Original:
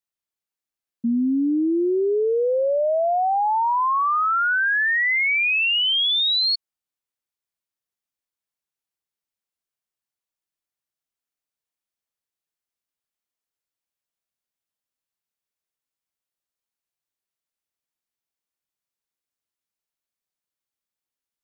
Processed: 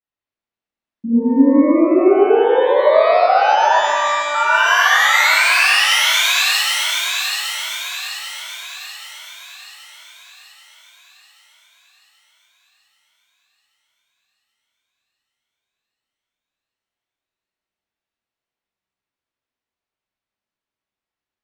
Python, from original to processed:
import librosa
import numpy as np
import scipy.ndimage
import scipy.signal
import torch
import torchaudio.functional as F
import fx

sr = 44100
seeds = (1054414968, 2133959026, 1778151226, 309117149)

p1 = scipy.signal.sosfilt(scipy.signal.butter(2, 2800.0, 'lowpass', fs=sr, output='sos'), x)
p2 = p1 + fx.echo_split(p1, sr, split_hz=680.0, low_ms=103, high_ms=782, feedback_pct=52, wet_db=-4.5, dry=0)
p3 = fx.robotise(p2, sr, hz=294.0, at=(3.78, 4.35))
p4 = fx.rev_shimmer(p3, sr, seeds[0], rt60_s=1.8, semitones=12, shimmer_db=-8, drr_db=-7.5)
y = F.gain(torch.from_numpy(p4), -2.5).numpy()